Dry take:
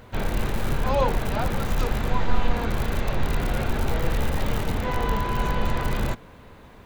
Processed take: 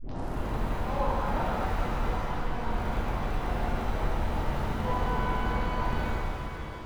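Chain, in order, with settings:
turntable start at the beginning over 0.37 s
high-shelf EQ 3,300 Hz −9.5 dB
downward compressor, threshold −25 dBFS, peak gain reduction 12.5 dB
dynamic equaliser 840 Hz, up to +5 dB, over −47 dBFS, Q 1.4
reverb with rising layers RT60 3.1 s, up +7 semitones, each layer −8 dB, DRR −6.5 dB
level −8 dB

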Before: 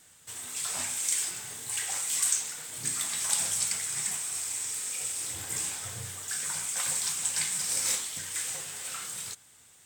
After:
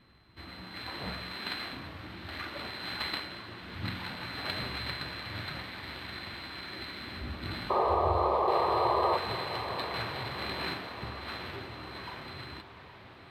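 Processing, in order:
samples sorted by size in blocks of 8 samples
low shelf with overshoot 530 Hz +6 dB, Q 1.5
sound drawn into the spectrogram noise, 0:05.70–0:06.80, 460–1,700 Hz −28 dBFS
high-frequency loss of the air 220 metres
on a send: feedback delay with all-pass diffusion 586 ms, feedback 56%, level −11 dB
on the sum: wrong playback speed 45 rpm record played at 33 rpm
level +2 dB

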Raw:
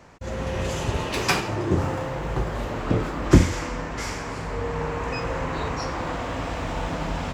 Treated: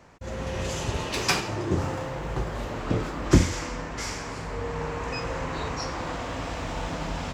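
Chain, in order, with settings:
dynamic equaliser 5,700 Hz, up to +5 dB, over −45 dBFS, Q 0.76
level −3.5 dB

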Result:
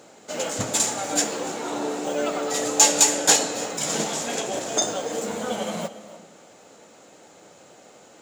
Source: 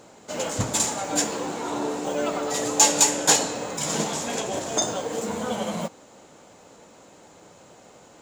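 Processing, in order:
high-pass filter 230 Hz 6 dB per octave
parametric band 1,000 Hz −6 dB 0.27 octaves
convolution reverb RT60 0.65 s, pre-delay 247 ms, DRR 15 dB
level +1.5 dB

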